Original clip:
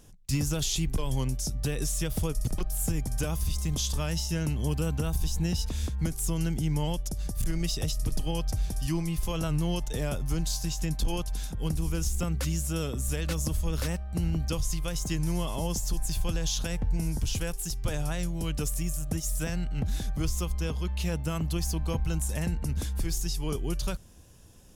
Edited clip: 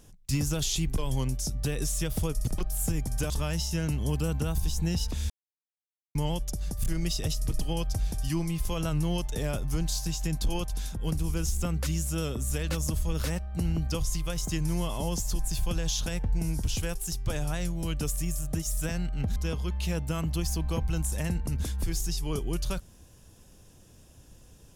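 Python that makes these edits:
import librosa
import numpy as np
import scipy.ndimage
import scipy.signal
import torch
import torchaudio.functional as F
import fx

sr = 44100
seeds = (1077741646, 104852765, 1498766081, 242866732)

y = fx.edit(x, sr, fx.cut(start_s=3.3, length_s=0.58),
    fx.silence(start_s=5.88, length_s=0.85),
    fx.cut(start_s=19.94, length_s=0.59), tone=tone)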